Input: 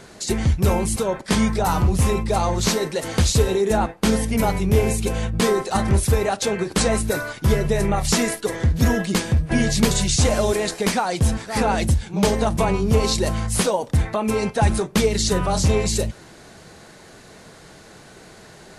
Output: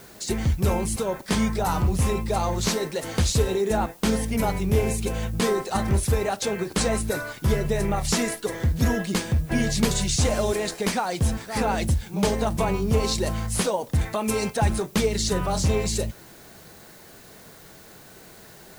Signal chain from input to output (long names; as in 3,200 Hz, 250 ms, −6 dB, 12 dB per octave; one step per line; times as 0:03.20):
0:14.01–0:14.57: high-shelf EQ 4,200 Hz +10.5 dB
background noise blue −48 dBFS
level −4 dB